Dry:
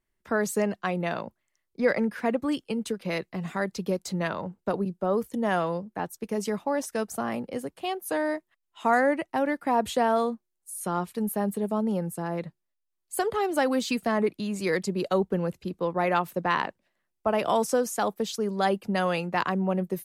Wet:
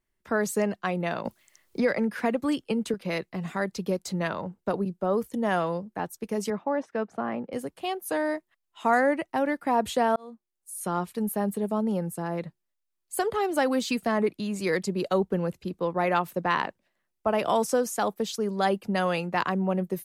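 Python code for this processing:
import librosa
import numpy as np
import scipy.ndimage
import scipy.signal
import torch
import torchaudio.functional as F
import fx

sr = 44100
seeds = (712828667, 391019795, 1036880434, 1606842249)

y = fx.band_squash(x, sr, depth_pct=70, at=(1.25, 2.94))
y = fx.bandpass_edges(y, sr, low_hz=140.0, high_hz=2100.0, at=(6.5, 7.53))
y = fx.edit(y, sr, fx.fade_in_span(start_s=10.16, length_s=0.63), tone=tone)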